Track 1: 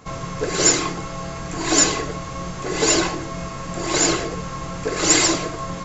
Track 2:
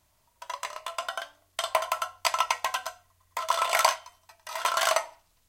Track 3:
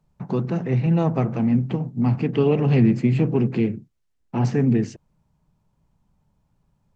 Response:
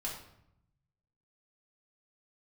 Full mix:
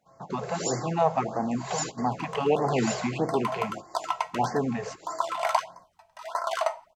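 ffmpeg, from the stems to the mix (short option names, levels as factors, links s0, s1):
-filter_complex "[0:a]highpass=87,volume=0.141[s0];[1:a]highshelf=f=8200:g=-11.5,adelay=1700,volume=0.376,asplit=2[s1][s2];[s2]volume=0.0668[s3];[2:a]highpass=f=740:p=1,volume=0.944,asplit=2[s4][s5];[s5]apad=whole_len=257837[s6];[s0][s6]sidechaingate=range=0.178:threshold=0.00794:ratio=16:detection=peak[s7];[3:a]atrim=start_sample=2205[s8];[s3][s8]afir=irnorm=-1:irlink=0[s9];[s7][s1][s4][s9]amix=inputs=4:normalize=0,equalizer=f=750:w=1.3:g=11,afftfilt=real='re*(1-between(b*sr/1024,260*pow(3100/260,0.5+0.5*sin(2*PI*1.6*pts/sr))/1.41,260*pow(3100/260,0.5+0.5*sin(2*PI*1.6*pts/sr))*1.41))':imag='im*(1-between(b*sr/1024,260*pow(3100/260,0.5+0.5*sin(2*PI*1.6*pts/sr))/1.41,260*pow(3100/260,0.5+0.5*sin(2*PI*1.6*pts/sr))*1.41))':win_size=1024:overlap=0.75"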